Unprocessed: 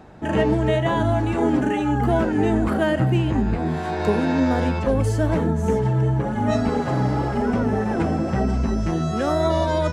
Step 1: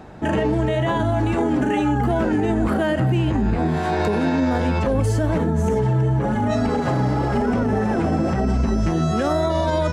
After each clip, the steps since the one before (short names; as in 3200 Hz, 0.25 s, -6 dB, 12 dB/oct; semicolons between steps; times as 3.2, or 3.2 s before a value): limiter -16.5 dBFS, peak gain reduction 9.5 dB; gain +4.5 dB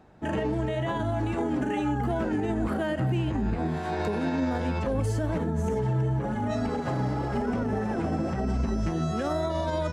upward expander 1.5:1, over -33 dBFS; gain -6.5 dB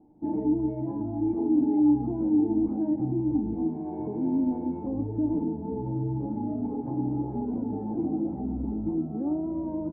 vocal tract filter u; outdoor echo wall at 170 m, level -13 dB; reverb RT60 0.25 s, pre-delay 4 ms, DRR 8.5 dB; gain +5.5 dB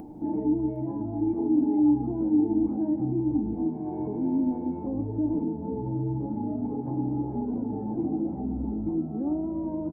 upward compressor, threshold -29 dBFS; echo 0.759 s -16 dB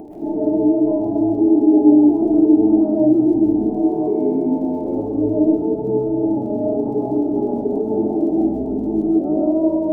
small resonant body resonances 410/610 Hz, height 16 dB, ringing for 35 ms; crackle 29/s -44 dBFS; digital reverb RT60 0.7 s, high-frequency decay 0.5×, pre-delay 90 ms, DRR -3 dB; gain -1 dB